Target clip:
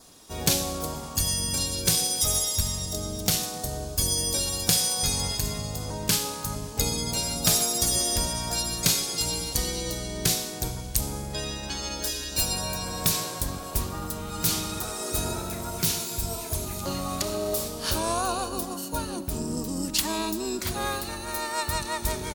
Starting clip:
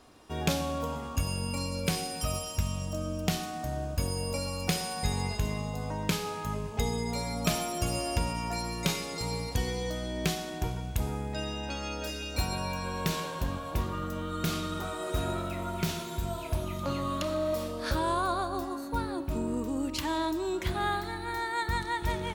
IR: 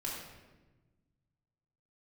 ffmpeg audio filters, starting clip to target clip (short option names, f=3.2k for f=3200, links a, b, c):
-filter_complex "[0:a]aexciter=amount=5.3:drive=3.3:freq=4.2k,asplit=3[a][b][c];[b]asetrate=29433,aresample=44100,atempo=1.49831,volume=-4dB[d];[c]asetrate=52444,aresample=44100,atempo=0.840896,volume=-18dB[e];[a][d][e]amix=inputs=3:normalize=0,adynamicequalizer=threshold=0.00316:dfrequency=2900:dqfactor=4.7:tfrequency=2900:tqfactor=4.7:attack=5:release=100:ratio=0.375:range=2:mode=cutabove:tftype=bell,volume=-1dB"